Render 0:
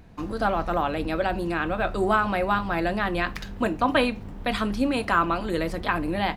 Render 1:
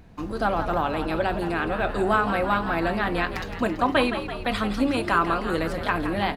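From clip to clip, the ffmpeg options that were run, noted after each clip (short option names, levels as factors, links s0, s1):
-filter_complex "[0:a]asplit=8[s0][s1][s2][s3][s4][s5][s6][s7];[s1]adelay=167,afreqshift=63,volume=0.316[s8];[s2]adelay=334,afreqshift=126,volume=0.191[s9];[s3]adelay=501,afreqshift=189,volume=0.114[s10];[s4]adelay=668,afreqshift=252,volume=0.0684[s11];[s5]adelay=835,afreqshift=315,volume=0.0412[s12];[s6]adelay=1002,afreqshift=378,volume=0.0245[s13];[s7]adelay=1169,afreqshift=441,volume=0.0148[s14];[s0][s8][s9][s10][s11][s12][s13][s14]amix=inputs=8:normalize=0"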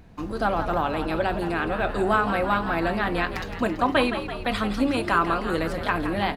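-af anull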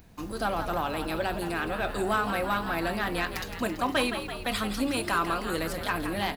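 -af "aemphasis=mode=production:type=75kf,aeval=exprs='0.531*(cos(1*acos(clip(val(0)/0.531,-1,1)))-cos(1*PI/2))+0.0422*(cos(5*acos(clip(val(0)/0.531,-1,1)))-cos(5*PI/2))':c=same,volume=0.398"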